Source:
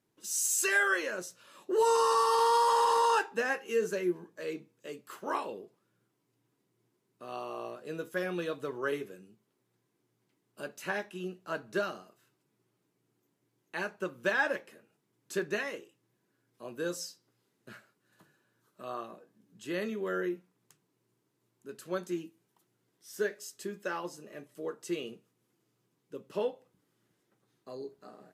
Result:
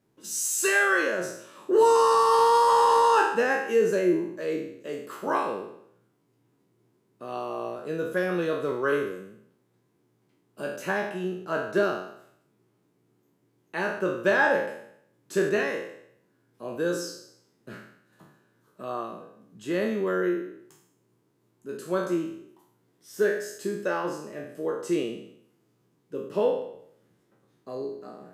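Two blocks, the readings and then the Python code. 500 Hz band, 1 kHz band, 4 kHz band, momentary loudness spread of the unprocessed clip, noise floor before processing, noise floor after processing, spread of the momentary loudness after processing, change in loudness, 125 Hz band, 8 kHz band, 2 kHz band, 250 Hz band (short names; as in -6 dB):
+8.0 dB, +6.0 dB, +3.0 dB, 21 LU, -78 dBFS, -70 dBFS, 21 LU, +6.0 dB, +8.5 dB, +2.5 dB, +5.5 dB, +9.0 dB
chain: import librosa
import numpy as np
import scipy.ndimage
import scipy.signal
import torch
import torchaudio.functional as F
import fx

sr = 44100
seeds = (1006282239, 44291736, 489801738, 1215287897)

y = fx.spec_trails(x, sr, decay_s=0.7)
y = fx.tilt_shelf(y, sr, db=4.0, hz=1400.0)
y = y * 10.0 ** (3.5 / 20.0)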